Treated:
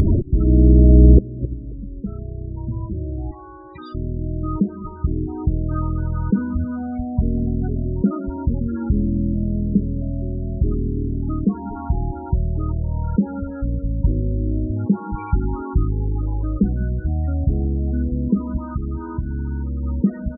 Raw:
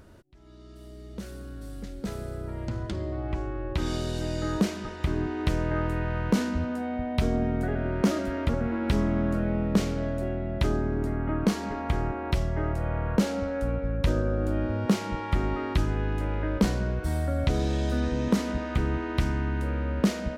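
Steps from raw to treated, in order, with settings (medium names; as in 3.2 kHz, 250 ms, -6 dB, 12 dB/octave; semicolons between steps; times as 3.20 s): 18.70–19.84 s: compression 4:1, threshold -27 dBFS, peak gain reduction 7.5 dB; inverted gate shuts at -32 dBFS, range -32 dB; 3.31–3.95 s: high-pass 850 Hz 6 dB/octave; feedback delay 268 ms, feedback 42%, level -22 dB; loudest bins only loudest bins 16; comb 0.9 ms, depth 64%; loudness maximiser +36 dB; trim -1 dB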